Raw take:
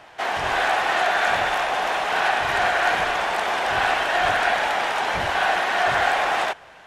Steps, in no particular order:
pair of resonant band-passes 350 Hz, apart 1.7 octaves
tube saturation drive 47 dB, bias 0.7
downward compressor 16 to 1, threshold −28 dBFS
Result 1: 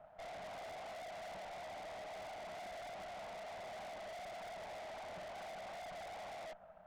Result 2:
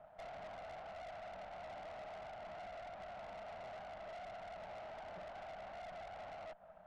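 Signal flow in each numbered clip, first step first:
pair of resonant band-passes, then downward compressor, then tube saturation
downward compressor, then pair of resonant band-passes, then tube saturation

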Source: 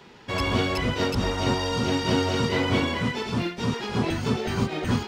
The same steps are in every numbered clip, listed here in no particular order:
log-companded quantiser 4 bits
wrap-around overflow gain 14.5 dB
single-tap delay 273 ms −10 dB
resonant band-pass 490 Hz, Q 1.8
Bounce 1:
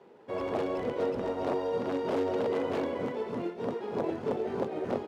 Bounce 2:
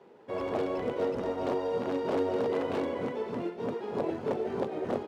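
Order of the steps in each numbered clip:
single-tap delay, then log-companded quantiser, then wrap-around overflow, then resonant band-pass
log-companded quantiser, then single-tap delay, then wrap-around overflow, then resonant band-pass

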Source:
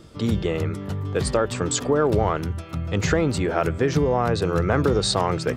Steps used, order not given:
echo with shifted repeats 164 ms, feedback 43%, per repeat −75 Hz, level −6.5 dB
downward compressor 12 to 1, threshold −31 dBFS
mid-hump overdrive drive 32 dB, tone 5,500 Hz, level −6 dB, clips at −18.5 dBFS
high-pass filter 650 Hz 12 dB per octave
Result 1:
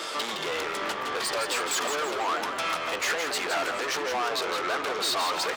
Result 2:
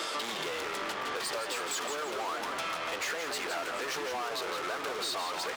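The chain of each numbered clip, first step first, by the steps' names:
downward compressor, then mid-hump overdrive, then high-pass filter, then echo with shifted repeats
mid-hump overdrive, then high-pass filter, then echo with shifted repeats, then downward compressor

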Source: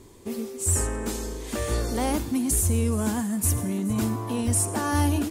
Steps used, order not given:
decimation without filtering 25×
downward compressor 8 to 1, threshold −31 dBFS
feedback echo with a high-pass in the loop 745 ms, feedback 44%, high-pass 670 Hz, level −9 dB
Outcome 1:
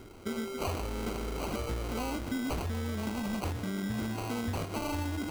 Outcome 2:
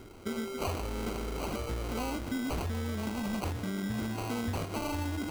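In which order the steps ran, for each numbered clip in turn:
feedback echo with a high-pass in the loop, then decimation without filtering, then downward compressor
feedback echo with a high-pass in the loop, then downward compressor, then decimation without filtering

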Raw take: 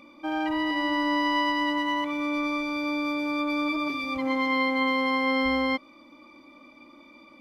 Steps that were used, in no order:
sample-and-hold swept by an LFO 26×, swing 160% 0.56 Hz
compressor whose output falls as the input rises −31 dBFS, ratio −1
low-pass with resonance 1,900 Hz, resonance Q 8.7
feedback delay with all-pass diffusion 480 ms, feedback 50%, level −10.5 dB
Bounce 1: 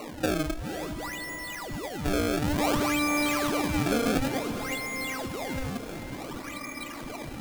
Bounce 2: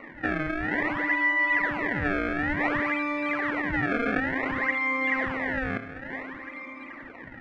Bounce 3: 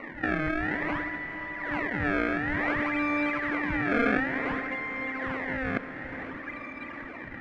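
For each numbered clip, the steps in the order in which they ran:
low-pass with resonance, then compressor whose output falls as the input rises, then sample-and-hold swept by an LFO, then feedback delay with all-pass diffusion
compressor whose output falls as the input rises, then feedback delay with all-pass diffusion, then sample-and-hold swept by an LFO, then low-pass with resonance
sample-and-hold swept by an LFO, then low-pass with resonance, then compressor whose output falls as the input rises, then feedback delay with all-pass diffusion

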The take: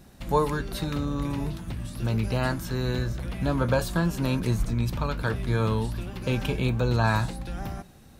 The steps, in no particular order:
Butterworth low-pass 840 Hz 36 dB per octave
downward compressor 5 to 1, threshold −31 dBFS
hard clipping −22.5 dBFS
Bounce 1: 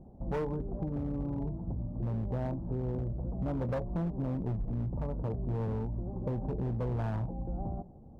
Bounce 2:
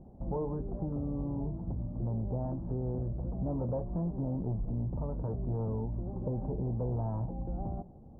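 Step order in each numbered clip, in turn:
Butterworth low-pass, then hard clipping, then downward compressor
hard clipping, then downward compressor, then Butterworth low-pass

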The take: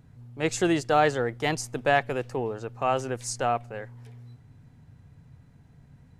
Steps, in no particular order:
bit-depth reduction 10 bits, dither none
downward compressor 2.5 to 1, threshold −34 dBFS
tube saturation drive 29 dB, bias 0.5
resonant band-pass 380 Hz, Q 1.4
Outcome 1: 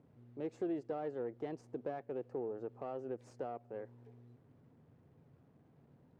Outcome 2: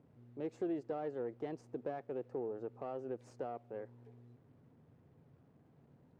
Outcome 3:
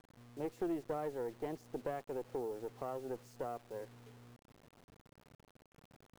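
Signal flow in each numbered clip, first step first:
bit-depth reduction, then downward compressor, then tube saturation, then resonant band-pass
downward compressor, then bit-depth reduction, then tube saturation, then resonant band-pass
downward compressor, then resonant band-pass, then tube saturation, then bit-depth reduction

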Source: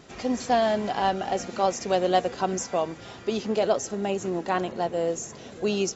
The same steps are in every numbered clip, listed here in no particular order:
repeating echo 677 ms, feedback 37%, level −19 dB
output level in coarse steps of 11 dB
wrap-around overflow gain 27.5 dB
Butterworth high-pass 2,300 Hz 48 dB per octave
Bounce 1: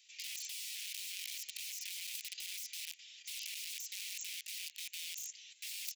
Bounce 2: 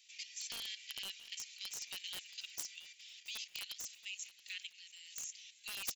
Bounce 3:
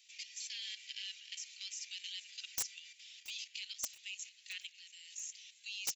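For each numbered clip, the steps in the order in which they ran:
repeating echo, then wrap-around overflow, then Butterworth high-pass, then output level in coarse steps
Butterworth high-pass, then wrap-around overflow, then output level in coarse steps, then repeating echo
Butterworth high-pass, then output level in coarse steps, then wrap-around overflow, then repeating echo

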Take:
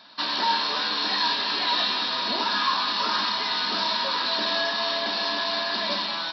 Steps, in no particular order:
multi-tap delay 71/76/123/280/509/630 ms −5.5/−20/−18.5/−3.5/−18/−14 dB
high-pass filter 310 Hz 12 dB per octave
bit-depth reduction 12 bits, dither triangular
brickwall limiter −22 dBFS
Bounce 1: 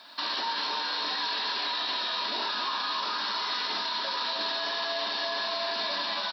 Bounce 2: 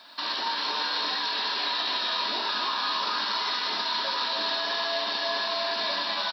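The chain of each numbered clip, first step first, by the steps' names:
bit-depth reduction, then multi-tap delay, then brickwall limiter, then high-pass filter
brickwall limiter, then high-pass filter, then bit-depth reduction, then multi-tap delay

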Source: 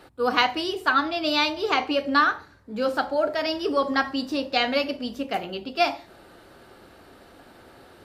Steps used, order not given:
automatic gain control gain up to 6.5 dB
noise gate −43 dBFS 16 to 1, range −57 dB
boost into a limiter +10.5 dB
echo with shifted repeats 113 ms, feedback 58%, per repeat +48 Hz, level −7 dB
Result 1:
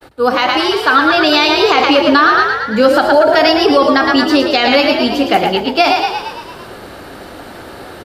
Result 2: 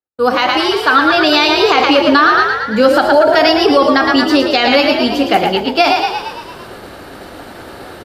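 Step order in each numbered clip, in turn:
echo with shifted repeats, then automatic gain control, then boost into a limiter, then noise gate
echo with shifted repeats, then automatic gain control, then noise gate, then boost into a limiter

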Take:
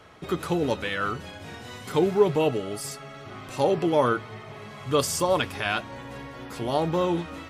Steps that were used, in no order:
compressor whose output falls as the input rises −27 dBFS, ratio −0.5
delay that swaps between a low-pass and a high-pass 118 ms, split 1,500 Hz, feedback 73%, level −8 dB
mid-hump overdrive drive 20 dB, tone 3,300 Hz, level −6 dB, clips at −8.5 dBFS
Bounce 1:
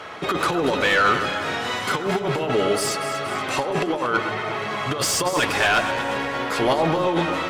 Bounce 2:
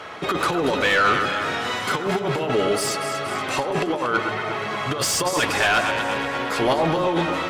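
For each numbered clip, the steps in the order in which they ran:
compressor whose output falls as the input rises, then mid-hump overdrive, then delay that swaps between a low-pass and a high-pass
compressor whose output falls as the input rises, then delay that swaps between a low-pass and a high-pass, then mid-hump overdrive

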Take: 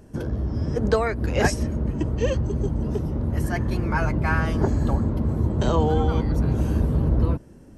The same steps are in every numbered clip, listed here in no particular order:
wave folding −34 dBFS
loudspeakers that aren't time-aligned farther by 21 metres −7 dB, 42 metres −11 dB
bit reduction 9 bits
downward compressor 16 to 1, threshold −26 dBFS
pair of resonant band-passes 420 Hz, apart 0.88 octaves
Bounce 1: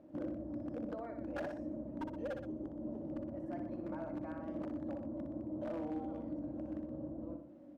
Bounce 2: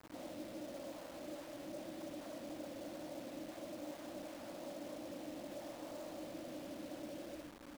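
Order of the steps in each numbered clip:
bit reduction, then downward compressor, then pair of resonant band-passes, then wave folding, then loudspeakers that aren't time-aligned
loudspeakers that aren't time-aligned, then downward compressor, then wave folding, then pair of resonant band-passes, then bit reduction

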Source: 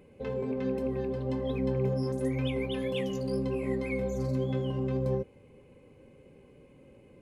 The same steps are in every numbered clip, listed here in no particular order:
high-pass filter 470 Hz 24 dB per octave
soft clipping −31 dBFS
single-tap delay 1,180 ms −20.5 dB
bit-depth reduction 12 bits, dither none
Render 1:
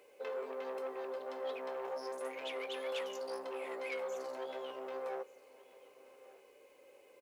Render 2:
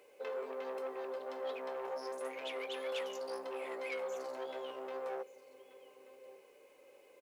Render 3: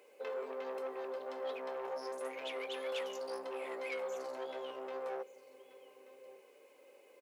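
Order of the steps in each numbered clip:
soft clipping, then high-pass filter, then bit-depth reduction, then single-tap delay
single-tap delay, then soft clipping, then high-pass filter, then bit-depth reduction
single-tap delay, then bit-depth reduction, then soft clipping, then high-pass filter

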